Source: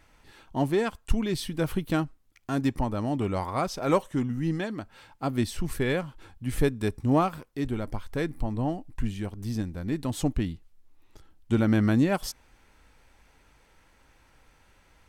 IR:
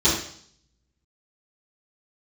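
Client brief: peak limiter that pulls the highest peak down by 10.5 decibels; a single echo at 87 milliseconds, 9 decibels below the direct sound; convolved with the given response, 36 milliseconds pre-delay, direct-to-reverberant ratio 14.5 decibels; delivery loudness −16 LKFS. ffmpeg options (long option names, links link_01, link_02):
-filter_complex "[0:a]alimiter=limit=-20dB:level=0:latency=1,aecho=1:1:87:0.355,asplit=2[link_01][link_02];[1:a]atrim=start_sample=2205,adelay=36[link_03];[link_02][link_03]afir=irnorm=-1:irlink=0,volume=-31.5dB[link_04];[link_01][link_04]amix=inputs=2:normalize=0,volume=15dB"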